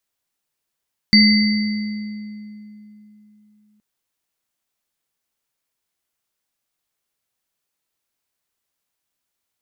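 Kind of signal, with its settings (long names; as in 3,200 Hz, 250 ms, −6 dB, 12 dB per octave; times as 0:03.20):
inharmonic partials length 2.67 s, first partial 211 Hz, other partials 2,050/4,610 Hz, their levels −5/0 dB, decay 3.42 s, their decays 2.00/1.59 s, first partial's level −10 dB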